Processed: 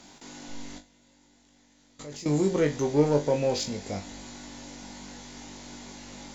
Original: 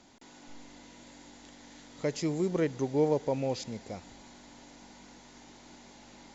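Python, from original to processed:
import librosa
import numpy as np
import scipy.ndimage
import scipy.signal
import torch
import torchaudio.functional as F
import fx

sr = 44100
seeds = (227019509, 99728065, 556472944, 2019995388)

p1 = fx.high_shelf(x, sr, hz=4100.0, db=6.0)
p2 = 10.0 ** (-31.0 / 20.0) * np.tanh(p1 / 10.0 ** (-31.0 / 20.0))
p3 = p1 + F.gain(torch.from_numpy(p2), -5.0).numpy()
p4 = fx.level_steps(p3, sr, step_db=22, at=(0.78, 2.26))
p5 = fx.room_flutter(p4, sr, wall_m=3.5, rt60_s=0.23)
y = F.gain(torch.from_numpy(p5), 1.5).numpy()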